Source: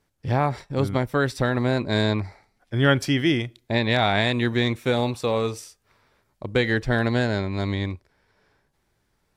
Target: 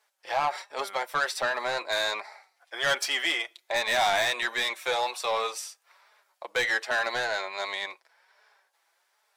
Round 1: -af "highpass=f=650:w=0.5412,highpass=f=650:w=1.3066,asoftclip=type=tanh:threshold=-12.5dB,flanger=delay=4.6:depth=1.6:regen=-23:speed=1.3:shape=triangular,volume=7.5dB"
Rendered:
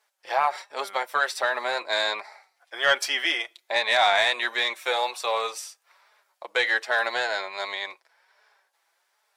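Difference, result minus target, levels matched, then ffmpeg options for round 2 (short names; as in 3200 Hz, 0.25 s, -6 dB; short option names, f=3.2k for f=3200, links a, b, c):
soft clip: distortion -12 dB
-af "highpass=f=650:w=0.5412,highpass=f=650:w=1.3066,asoftclip=type=tanh:threshold=-23dB,flanger=delay=4.6:depth=1.6:regen=-23:speed=1.3:shape=triangular,volume=7.5dB"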